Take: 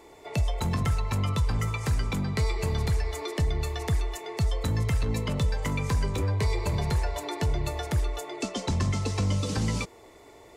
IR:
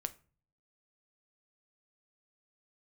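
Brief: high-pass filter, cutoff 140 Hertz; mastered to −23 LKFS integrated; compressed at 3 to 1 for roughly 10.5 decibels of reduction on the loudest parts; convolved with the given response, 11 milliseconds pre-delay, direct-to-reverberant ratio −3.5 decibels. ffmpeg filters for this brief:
-filter_complex "[0:a]highpass=140,acompressor=threshold=-41dB:ratio=3,asplit=2[link_01][link_02];[1:a]atrim=start_sample=2205,adelay=11[link_03];[link_02][link_03]afir=irnorm=-1:irlink=0,volume=4.5dB[link_04];[link_01][link_04]amix=inputs=2:normalize=0,volume=13.5dB"

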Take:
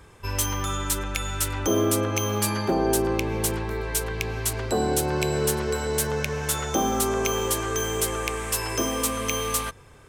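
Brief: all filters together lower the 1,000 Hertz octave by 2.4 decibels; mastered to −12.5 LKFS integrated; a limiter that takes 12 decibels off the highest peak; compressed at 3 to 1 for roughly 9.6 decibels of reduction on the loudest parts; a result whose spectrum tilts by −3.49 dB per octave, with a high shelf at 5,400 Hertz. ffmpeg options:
ffmpeg -i in.wav -af "equalizer=frequency=1000:width_type=o:gain=-3.5,highshelf=frequency=5400:gain=8.5,acompressor=threshold=-29dB:ratio=3,volume=19.5dB,alimiter=limit=-2dB:level=0:latency=1" out.wav

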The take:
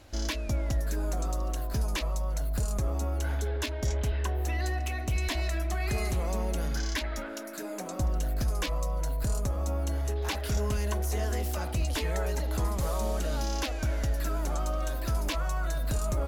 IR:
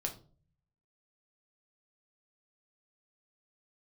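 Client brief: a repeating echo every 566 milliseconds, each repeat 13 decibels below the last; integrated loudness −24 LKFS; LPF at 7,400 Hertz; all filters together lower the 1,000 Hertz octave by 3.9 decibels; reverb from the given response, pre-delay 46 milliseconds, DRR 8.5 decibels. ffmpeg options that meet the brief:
-filter_complex "[0:a]lowpass=7400,equalizer=frequency=1000:width_type=o:gain=-5.5,aecho=1:1:566|1132|1698:0.224|0.0493|0.0108,asplit=2[link_01][link_02];[1:a]atrim=start_sample=2205,adelay=46[link_03];[link_02][link_03]afir=irnorm=-1:irlink=0,volume=-9.5dB[link_04];[link_01][link_04]amix=inputs=2:normalize=0,volume=7dB"

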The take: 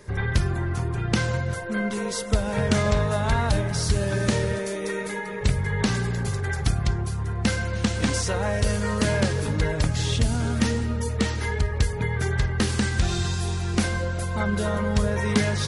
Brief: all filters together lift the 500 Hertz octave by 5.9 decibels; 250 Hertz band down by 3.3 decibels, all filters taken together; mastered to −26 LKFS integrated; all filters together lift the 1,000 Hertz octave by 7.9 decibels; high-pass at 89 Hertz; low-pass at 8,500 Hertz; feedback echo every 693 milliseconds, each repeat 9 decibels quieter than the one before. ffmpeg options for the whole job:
ffmpeg -i in.wav -af "highpass=89,lowpass=8500,equalizer=frequency=250:width_type=o:gain=-6,equalizer=frequency=500:width_type=o:gain=6.5,equalizer=frequency=1000:width_type=o:gain=8,aecho=1:1:693|1386|2079|2772:0.355|0.124|0.0435|0.0152,volume=-2.5dB" out.wav

